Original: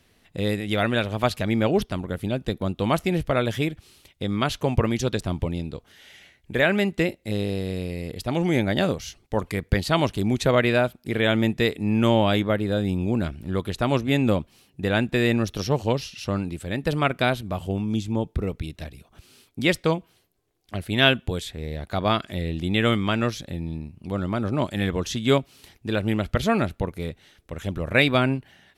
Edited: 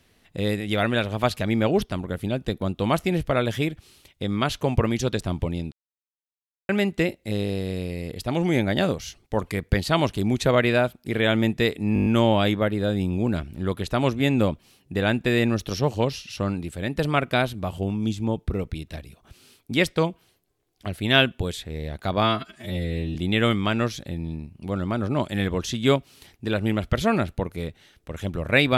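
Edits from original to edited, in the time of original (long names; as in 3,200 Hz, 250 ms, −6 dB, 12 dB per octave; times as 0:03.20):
0:05.72–0:06.69: silence
0:11.94: stutter 0.02 s, 7 plays
0:22.11–0:22.57: time-stretch 2×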